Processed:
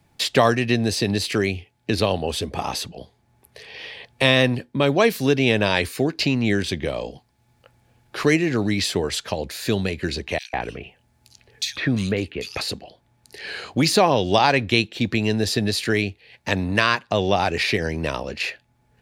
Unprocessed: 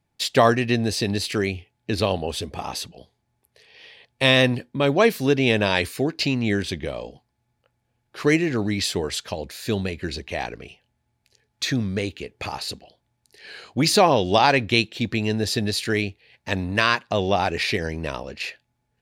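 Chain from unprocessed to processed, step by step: 10.38–12.61 s: bands offset in time highs, lows 150 ms, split 2.9 kHz; three bands compressed up and down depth 40%; trim +1.5 dB

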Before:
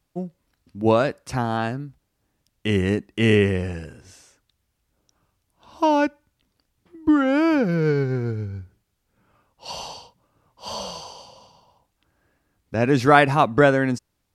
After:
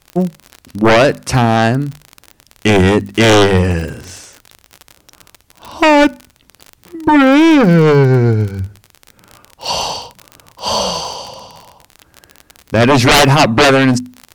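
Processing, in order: sine folder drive 15 dB, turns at -1.5 dBFS; hum notches 50/100/150/200/250 Hz; crackle 46 per s -17 dBFS; trim -3 dB

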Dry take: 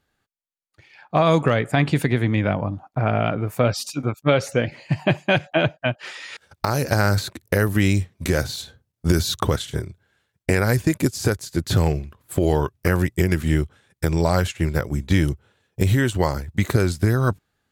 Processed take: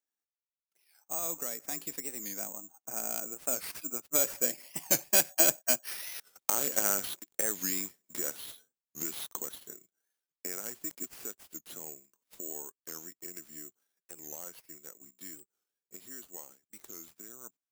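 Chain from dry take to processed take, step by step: Doppler pass-by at 5.74 s, 11 m/s, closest 11 m; high-pass 230 Hz 24 dB/octave; careless resampling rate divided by 6×, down none, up zero stuff; warped record 45 rpm, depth 160 cents; trim -11 dB

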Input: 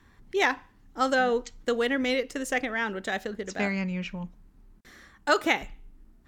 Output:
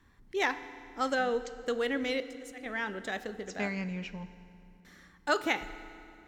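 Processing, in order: 2.20–2.66 s: slow attack 294 ms; FDN reverb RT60 2.6 s, low-frequency decay 1.5×, high-frequency decay 0.8×, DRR 12 dB; trim -5.5 dB

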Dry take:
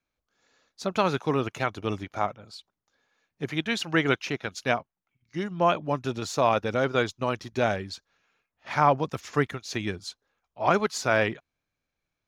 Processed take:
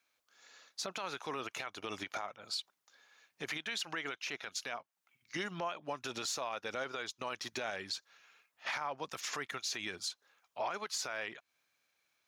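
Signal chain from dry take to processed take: high-pass 1.4 kHz 6 dB/octave; compression 12:1, threshold -40 dBFS, peak gain reduction 20 dB; peak limiter -37 dBFS, peak gain reduction 11.5 dB; trim +9.5 dB

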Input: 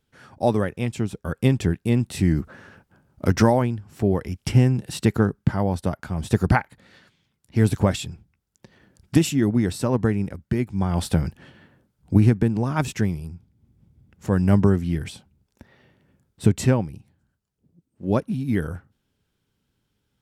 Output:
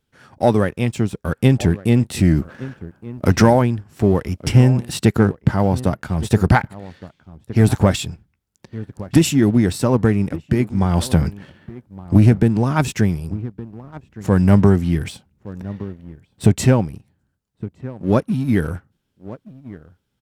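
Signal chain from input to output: echo from a far wall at 200 m, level -17 dB; waveshaping leveller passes 1; trim +2 dB

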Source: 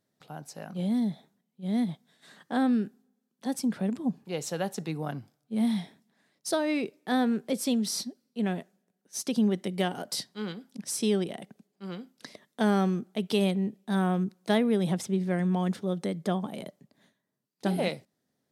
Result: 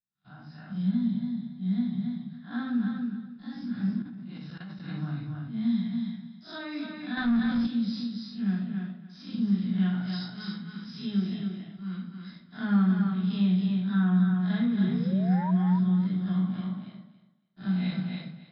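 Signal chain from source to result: spectral blur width 115 ms; gate -54 dBFS, range -22 dB; simulated room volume 340 m³, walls furnished, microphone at 3.2 m; 14.83–15.51 s: painted sound rise 350–1000 Hz -20 dBFS; on a send: thinning echo 280 ms, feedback 18%, high-pass 160 Hz, level -4.5 dB; 7.17–7.67 s: on the sum: waveshaping leveller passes 2; in parallel at -2 dB: compression, threshold -26 dBFS, peak gain reduction 13 dB; on the sum: FFT filter 200 Hz 0 dB, 440 Hz -22 dB, 1.6 kHz -8 dB; 4.02–4.88 s: level held to a coarse grid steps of 17 dB; rippled Chebyshev low-pass 5.2 kHz, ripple 9 dB; trim +2.5 dB

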